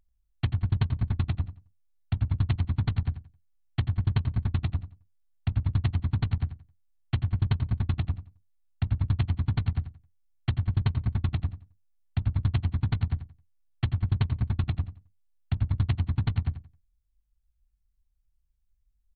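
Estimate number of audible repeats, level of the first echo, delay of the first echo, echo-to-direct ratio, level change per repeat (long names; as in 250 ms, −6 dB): 2, −12.5 dB, 88 ms, −12.5 dB, −13.0 dB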